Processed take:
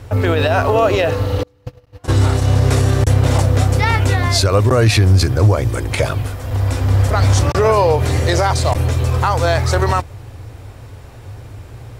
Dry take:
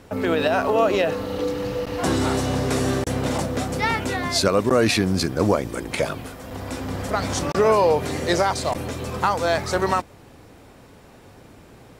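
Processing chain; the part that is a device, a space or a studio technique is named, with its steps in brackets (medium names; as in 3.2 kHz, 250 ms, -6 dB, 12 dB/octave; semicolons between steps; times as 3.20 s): car stereo with a boomy subwoofer (resonant low shelf 140 Hz +8.5 dB, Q 3; peak limiter -10.5 dBFS, peak gain reduction 7.5 dB); 1.43–2.50 s: gate -18 dBFS, range -35 dB; trim +6 dB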